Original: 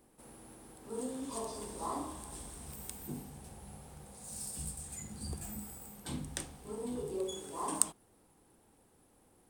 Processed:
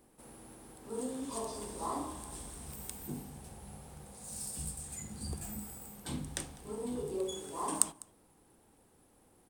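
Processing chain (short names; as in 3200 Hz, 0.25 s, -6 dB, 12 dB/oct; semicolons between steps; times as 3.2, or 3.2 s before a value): echo 0.201 s -22.5 dB; gain +1 dB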